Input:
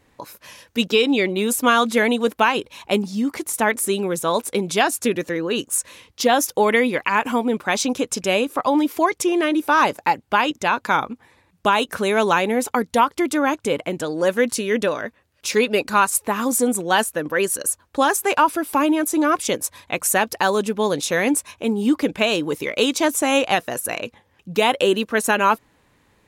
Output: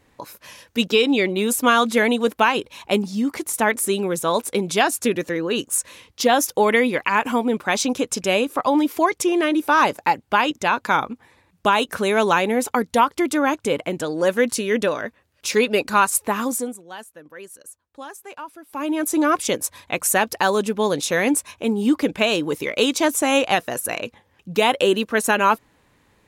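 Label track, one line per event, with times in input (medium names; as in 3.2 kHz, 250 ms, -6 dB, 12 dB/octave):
16.360000	19.110000	dip -19 dB, fades 0.42 s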